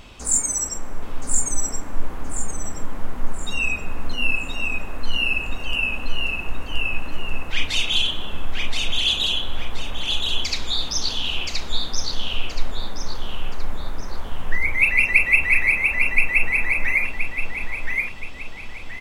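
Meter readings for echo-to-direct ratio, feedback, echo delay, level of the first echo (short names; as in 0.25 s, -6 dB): -2.5 dB, 36%, 1.024 s, -3.0 dB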